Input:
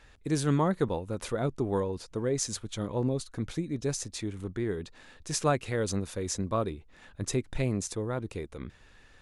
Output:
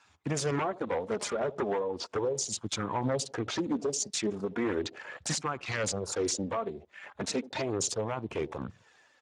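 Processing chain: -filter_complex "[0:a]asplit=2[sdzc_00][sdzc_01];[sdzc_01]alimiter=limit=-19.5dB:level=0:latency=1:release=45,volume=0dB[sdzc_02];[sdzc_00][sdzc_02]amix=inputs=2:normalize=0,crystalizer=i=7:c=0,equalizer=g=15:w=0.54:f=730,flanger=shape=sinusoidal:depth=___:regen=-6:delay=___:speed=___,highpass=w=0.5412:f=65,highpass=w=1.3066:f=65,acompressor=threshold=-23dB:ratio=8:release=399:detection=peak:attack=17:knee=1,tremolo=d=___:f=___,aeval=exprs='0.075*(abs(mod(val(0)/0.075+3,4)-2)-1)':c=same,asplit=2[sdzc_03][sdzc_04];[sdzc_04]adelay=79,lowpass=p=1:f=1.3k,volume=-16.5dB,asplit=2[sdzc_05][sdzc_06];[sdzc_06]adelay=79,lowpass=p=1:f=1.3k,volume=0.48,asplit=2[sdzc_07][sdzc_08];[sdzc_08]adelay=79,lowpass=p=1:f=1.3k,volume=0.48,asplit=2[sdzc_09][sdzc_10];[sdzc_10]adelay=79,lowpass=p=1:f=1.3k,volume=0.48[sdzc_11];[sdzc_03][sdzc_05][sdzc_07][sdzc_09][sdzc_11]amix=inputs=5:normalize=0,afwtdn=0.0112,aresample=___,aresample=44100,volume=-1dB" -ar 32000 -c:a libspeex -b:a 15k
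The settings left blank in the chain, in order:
4.2, 0.8, 0.36, 0.39, 1.9, 22050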